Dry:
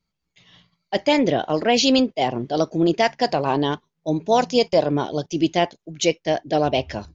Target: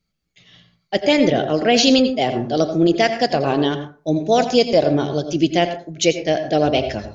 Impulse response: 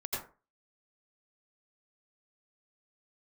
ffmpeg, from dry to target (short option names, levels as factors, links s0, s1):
-filter_complex "[0:a]equalizer=f=960:t=o:w=0.33:g=-12,asplit=2[s0][s1];[1:a]atrim=start_sample=2205[s2];[s1][s2]afir=irnorm=-1:irlink=0,volume=0.335[s3];[s0][s3]amix=inputs=2:normalize=0,volume=1.19"